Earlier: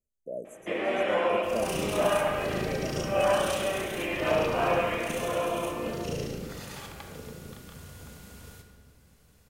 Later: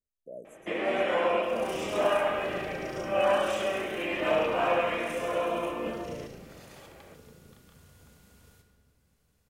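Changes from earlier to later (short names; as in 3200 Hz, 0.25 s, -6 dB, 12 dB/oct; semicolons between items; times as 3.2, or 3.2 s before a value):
speech -6.5 dB; second sound -10.5 dB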